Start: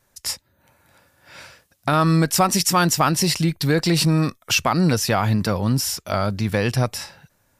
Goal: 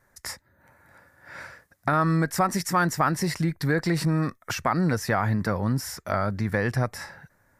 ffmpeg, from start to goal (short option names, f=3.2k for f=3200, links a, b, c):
-af "acompressor=threshold=-30dB:ratio=1.5,highshelf=f=2.3k:t=q:w=3:g=-6.5"